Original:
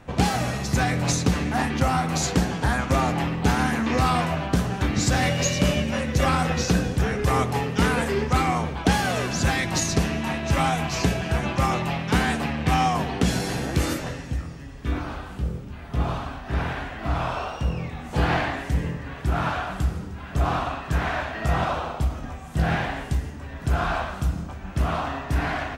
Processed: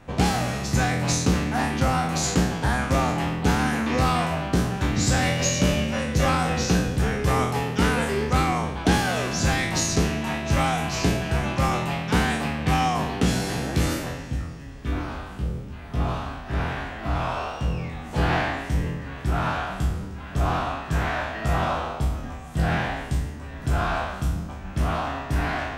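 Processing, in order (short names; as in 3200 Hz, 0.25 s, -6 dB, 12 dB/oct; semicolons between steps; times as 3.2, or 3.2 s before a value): spectral trails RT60 0.63 s; gain -2 dB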